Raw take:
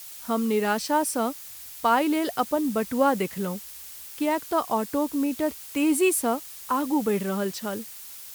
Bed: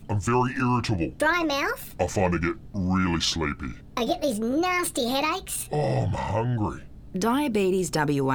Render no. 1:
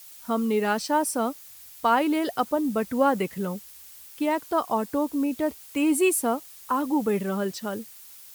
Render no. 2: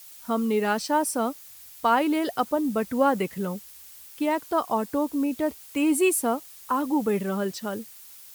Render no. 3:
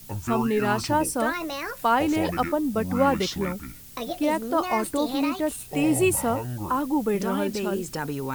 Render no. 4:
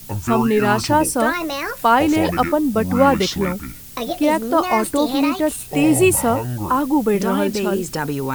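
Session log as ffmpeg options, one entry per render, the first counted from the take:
-af "afftdn=nr=6:nf=-42"
-af anull
-filter_complex "[1:a]volume=-6.5dB[a];[0:a][a]amix=inputs=2:normalize=0"
-af "volume=7dB"

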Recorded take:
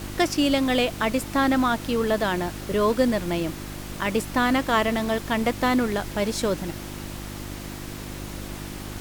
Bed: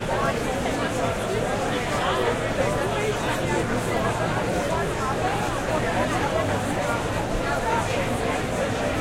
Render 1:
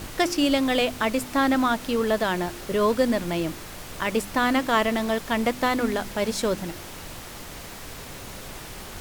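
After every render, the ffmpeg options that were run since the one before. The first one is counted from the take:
-af "bandreject=f=50:t=h:w=4,bandreject=f=100:t=h:w=4,bandreject=f=150:t=h:w=4,bandreject=f=200:t=h:w=4,bandreject=f=250:t=h:w=4,bandreject=f=300:t=h:w=4,bandreject=f=350:t=h:w=4"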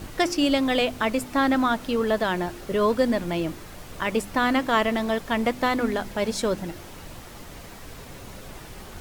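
-af "afftdn=nr=6:nf=-40"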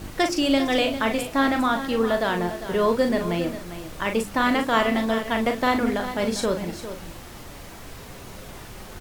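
-filter_complex "[0:a]asplit=2[a][b];[b]adelay=40,volume=-6.5dB[c];[a][c]amix=inputs=2:normalize=0,aecho=1:1:401:0.266"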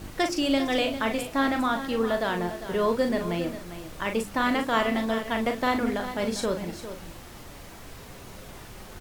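-af "volume=-3.5dB"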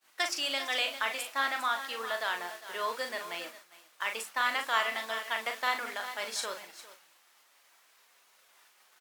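-af "highpass=1.1k,agate=range=-33dB:threshold=-39dB:ratio=3:detection=peak"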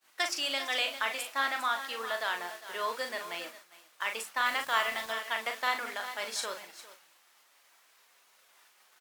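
-filter_complex "[0:a]asettb=1/sr,asplit=3[a][b][c];[a]atrim=end=4.464[d];[b]atrim=start=4.46:end=5.13,asetpts=PTS-STARTPTS,afade=t=in:d=0.004:c=qsin,afade=t=out:st=0.666:d=0.004:c=qsin,acrusher=bits=6:mix=0:aa=0.5[e];[c]atrim=start=5.126[f];[d][e]acrossfade=d=0.004:c1=hsin:c2=qsin[g];[g][f]acrossfade=d=0.004:c1=qsin:c2=hsin"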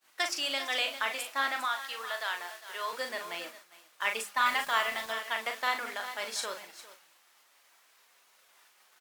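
-filter_complex "[0:a]asettb=1/sr,asplit=3[a][b][c];[a]atrim=end=1.654[d];[b]atrim=start=1.65:end=2.93,asetpts=PTS-STARTPTS,afade=t=in:d=0.004:c=qsin,afade=t=out:st=1.276:d=0.004:c=qsin,highpass=f=840:p=1[e];[c]atrim=start=2.926[f];[d][e]acrossfade=d=0.004:c1=hsin:c2=qsin[g];[g][f]acrossfade=d=0.004:c1=qsin:c2=hsin,asettb=1/sr,asplit=3[h][i][j];[h]atrim=end=4.024[k];[i]atrim=start=4.02:end=4.71,asetpts=PTS-STARTPTS,afade=t=in:d=0.004:c=qsin,afade=t=out:st=0.686:d=0.004:c=qsin,aecho=1:1:4.9:0.68,atrim=end_sample=30429[l];[j]atrim=start=4.706[m];[k][l]acrossfade=d=0.004:c1=hsin:c2=qsin[n];[n][m]acrossfade=d=0.004:c1=qsin:c2=hsin"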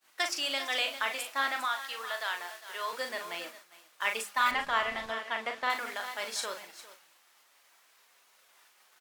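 -filter_complex "[0:a]asettb=1/sr,asplit=3[a][b][c];[a]atrim=end=4.514[d];[b]atrim=start=4.51:end=5.7,asetpts=PTS-STARTPTS,afade=t=in:d=0.004:c=qsin,afade=t=out:st=1.186:d=0.004:c=qsin,aemphasis=mode=reproduction:type=bsi[e];[c]atrim=start=5.696[f];[d][e]acrossfade=d=0.004:c1=hsin:c2=qsin[g];[g][f]acrossfade=d=0.004:c1=qsin:c2=hsin"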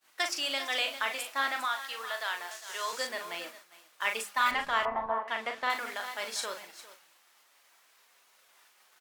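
-filter_complex "[0:a]asettb=1/sr,asplit=3[a][b][c];[a]atrim=end=2.514[d];[b]atrim=start=2.51:end=3.07,asetpts=PTS-STARTPTS,afade=t=in:d=0.004:c=qsin,afade=t=out:st=0.556:d=0.004:c=qsin,equalizer=f=6.7k:t=o:w=1:g=12[e];[c]atrim=start=3.066[f];[d][e]acrossfade=d=0.004:c1=hsin:c2=qsin[g];[g][f]acrossfade=d=0.004:c1=qsin:c2=hsin,asettb=1/sr,asplit=3[h][i][j];[h]atrim=end=4.854[k];[i]atrim=start=4.85:end=5.28,asetpts=PTS-STARTPTS,afade=t=in:d=0.004:c=qsin,afade=t=out:st=0.426:d=0.004:c=qsin,lowpass=f=970:t=q:w=4.2[l];[j]atrim=start=5.276[m];[k][l]acrossfade=d=0.004:c1=hsin:c2=qsin[n];[n][m]acrossfade=d=0.004:c1=qsin:c2=hsin"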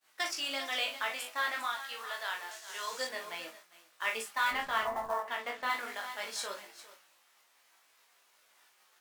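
-af "acrusher=bits=5:mode=log:mix=0:aa=0.000001,flanger=delay=18:depth=2.9:speed=0.25"

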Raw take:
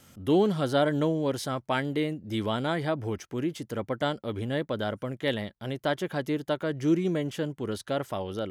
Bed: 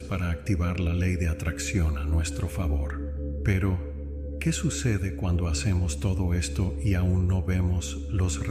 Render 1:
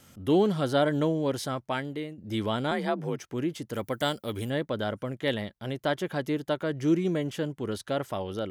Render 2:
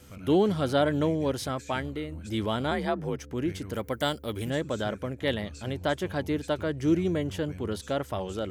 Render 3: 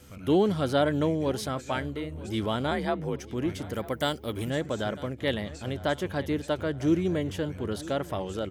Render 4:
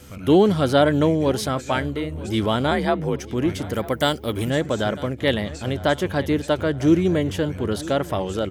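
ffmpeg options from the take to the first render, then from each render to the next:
-filter_complex "[0:a]asettb=1/sr,asplit=3[a][b][c];[a]atrim=end=2.714[d];[b]atrim=start=2.71:end=3.21,asetpts=PTS-STARTPTS,afade=t=in:d=0.004:c=qsin,afade=t=out:st=0.496:d=0.004:c=qsin,afreqshift=44[e];[c]atrim=start=3.206[f];[d][e]acrossfade=d=0.004:c1=hsin:c2=qsin[g];[g][f]acrossfade=d=0.004:c1=qsin:c2=hsin,asettb=1/sr,asplit=3[h][i][j];[h]atrim=end=3.734[k];[i]atrim=start=3.73:end=4.5,asetpts=PTS-STARTPTS,afade=t=in:d=0.004:c=qsin,afade=t=out:st=0.766:d=0.004:c=qsin,aemphasis=mode=production:type=75fm[l];[j]atrim=start=4.496[m];[k][l]acrossfade=d=0.004:c1=hsin:c2=qsin[n];[n][m]acrossfade=d=0.004:c1=qsin:c2=hsin,asplit=2[o][p];[o]atrim=end=2.18,asetpts=PTS-STARTPTS,afade=t=out:st=1.45:d=0.73:silence=0.281838[q];[p]atrim=start=2.18,asetpts=PTS-STARTPTS,afade=t=in:d=0.004:c=hsin:silence=0.281838[r];[q][r]concat=n=2:v=0:a=1"
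-filter_complex "[1:a]volume=-17dB[a];[0:a][a]amix=inputs=2:normalize=0"
-filter_complex "[0:a]asplit=2[a][b];[b]adelay=948,lowpass=f=4.5k:p=1,volume=-18dB,asplit=2[c][d];[d]adelay=948,lowpass=f=4.5k:p=1,volume=0.53,asplit=2[e][f];[f]adelay=948,lowpass=f=4.5k:p=1,volume=0.53,asplit=2[g][h];[h]adelay=948,lowpass=f=4.5k:p=1,volume=0.53[i];[a][c][e][g][i]amix=inputs=5:normalize=0"
-af "volume=7.5dB"

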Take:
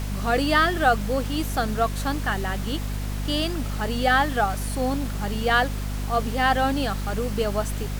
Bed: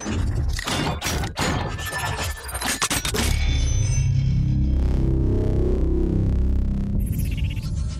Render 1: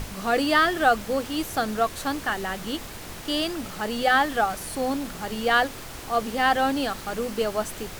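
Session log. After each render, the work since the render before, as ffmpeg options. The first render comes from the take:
-af "bandreject=f=50:t=h:w=6,bandreject=f=100:t=h:w=6,bandreject=f=150:t=h:w=6,bandreject=f=200:t=h:w=6,bandreject=f=250:t=h:w=6"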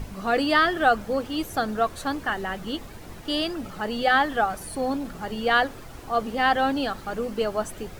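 -af "afftdn=nr=10:nf=-39"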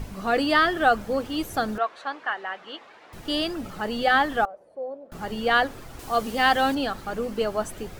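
-filter_complex "[0:a]asettb=1/sr,asplit=3[a][b][c];[a]atrim=end=1.784[d];[b]atrim=start=1.78:end=3.13,asetpts=PTS-STARTPTS,afade=t=in:d=0.004:c=qsin,afade=t=out:st=1.346:d=0.004:c=qsin,highpass=660,lowpass=3k[e];[c]atrim=start=3.126[f];[d][e]acrossfade=d=0.004:c1=hsin:c2=qsin[g];[g][f]acrossfade=d=0.004:c1=qsin:c2=hsin,asettb=1/sr,asplit=3[h][i][j];[h]atrim=end=4.454[k];[i]atrim=start=4.45:end=5.12,asetpts=PTS-STARTPTS,afade=t=in:d=0.004:c=qsin,afade=t=out:st=0.666:d=0.004:c=qsin,bandpass=f=560:t=q:w=6.5[l];[j]atrim=start=5.116[m];[k][l]acrossfade=d=0.004:c1=hsin:c2=qsin[n];[n][m]acrossfade=d=0.004:c1=qsin:c2=hsin,asettb=1/sr,asplit=3[o][p][q];[o]atrim=end=5.994[r];[p]atrim=start=5.99:end=6.75,asetpts=PTS-STARTPTS,afade=t=in:d=0.004:c=qsin,afade=t=out:st=0.756:d=0.004:c=qsin,highshelf=f=3.4k:g=9.5[s];[q]atrim=start=6.746[t];[r][s]acrossfade=d=0.004:c1=hsin:c2=qsin[u];[u][t]acrossfade=d=0.004:c1=qsin:c2=hsin"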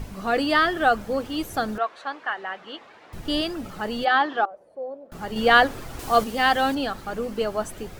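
-filter_complex "[0:a]asettb=1/sr,asplit=3[a][b][c];[a]atrim=end=2.384[d];[b]atrim=start=2.38:end=3.41,asetpts=PTS-STARTPTS,afade=t=in:d=0.004:c=qsin,afade=t=out:st=1.026:d=0.004:c=qsin,lowshelf=f=200:g=8[e];[c]atrim=start=3.406[f];[d][e]acrossfade=d=0.004:c1=hsin:c2=qsin[g];[g][f]acrossfade=d=0.004:c1=qsin:c2=hsin,asplit=3[h][i][j];[h]afade=t=out:st=4.04:d=0.02[k];[i]highpass=340,equalizer=f=350:t=q:w=4:g=9,equalizer=f=510:t=q:w=4:g=-4,equalizer=f=1k:t=q:w=4:g=4,equalizer=f=2.1k:t=q:w=4:g=-4,lowpass=f=4.8k:w=0.5412,lowpass=f=4.8k:w=1.3066,afade=t=in:st=4.04:d=0.02,afade=t=out:st=4.5:d=0.02[l];[j]afade=t=in:st=4.5:d=0.02[m];[k][l][m]amix=inputs=3:normalize=0,asplit=3[n][o][p];[n]atrim=end=5.362[q];[o]atrim=start=5.358:end=6.242,asetpts=PTS-STARTPTS,volume=5dB[r];[p]atrim=start=6.238[s];[q][r]acrossfade=d=0.004:c1=hsin:c2=hsin[t];[t][s]acrossfade=d=0.004:c1=hsin:c2=hsin"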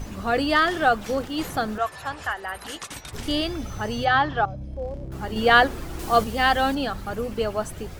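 -filter_complex "[1:a]volume=-15dB[a];[0:a][a]amix=inputs=2:normalize=0"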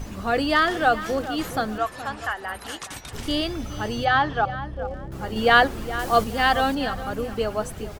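-filter_complex "[0:a]asplit=2[a][b];[b]adelay=419,lowpass=f=2.8k:p=1,volume=-13dB,asplit=2[c][d];[d]adelay=419,lowpass=f=2.8k:p=1,volume=0.27,asplit=2[e][f];[f]adelay=419,lowpass=f=2.8k:p=1,volume=0.27[g];[a][c][e][g]amix=inputs=4:normalize=0"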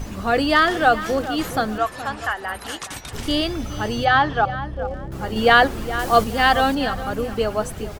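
-af "volume=3.5dB,alimiter=limit=-1dB:level=0:latency=1"

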